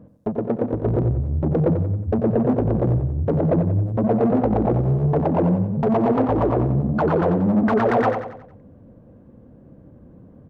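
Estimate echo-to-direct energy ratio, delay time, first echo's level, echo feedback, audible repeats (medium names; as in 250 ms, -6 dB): -7.0 dB, 91 ms, -8.0 dB, 45%, 4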